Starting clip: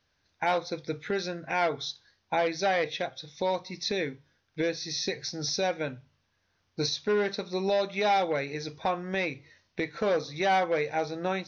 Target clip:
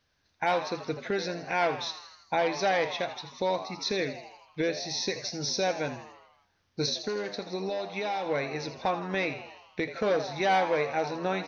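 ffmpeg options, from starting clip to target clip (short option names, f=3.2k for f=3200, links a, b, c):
-filter_complex "[0:a]asettb=1/sr,asplit=3[a][b][c];[a]atrim=end=7.064[d];[b]atrim=start=7.06:end=8.26,asetpts=PTS-STARTPTS,afade=t=in:d=0.004:c=qsin,afade=t=out:st=1.196:d=0.004:c=qsin,acompressor=threshold=-30dB:ratio=6[e];[c]atrim=start=8.256[f];[d][e]acrossfade=d=0.004:c1=hsin:c2=qsin[g];[g][f]acrossfade=d=0.004:c1=qsin:c2=hsin,asplit=2[h][i];[i]asplit=7[j][k][l][m][n][o][p];[j]adelay=81,afreqshift=99,volume=-12dB[q];[k]adelay=162,afreqshift=198,volume=-16.4dB[r];[l]adelay=243,afreqshift=297,volume=-20.9dB[s];[m]adelay=324,afreqshift=396,volume=-25.3dB[t];[n]adelay=405,afreqshift=495,volume=-29.7dB[u];[o]adelay=486,afreqshift=594,volume=-34.2dB[v];[p]adelay=567,afreqshift=693,volume=-38.6dB[w];[q][r][s][t][u][v][w]amix=inputs=7:normalize=0[x];[h][x]amix=inputs=2:normalize=0"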